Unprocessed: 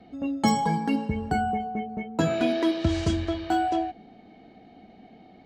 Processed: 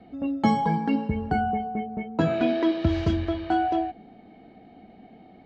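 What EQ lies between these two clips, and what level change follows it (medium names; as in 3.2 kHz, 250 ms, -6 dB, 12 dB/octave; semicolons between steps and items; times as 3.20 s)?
distance through air 200 m; +1.5 dB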